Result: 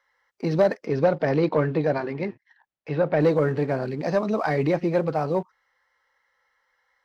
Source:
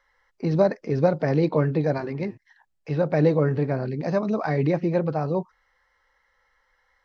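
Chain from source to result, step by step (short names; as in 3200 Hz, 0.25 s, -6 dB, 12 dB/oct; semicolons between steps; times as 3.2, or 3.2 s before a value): HPF 170 Hz 6 dB/oct; low shelf 390 Hz -3.5 dB; sample leveller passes 1; 0.85–3.19 LPF 5300 Hz -> 3200 Hz 12 dB/oct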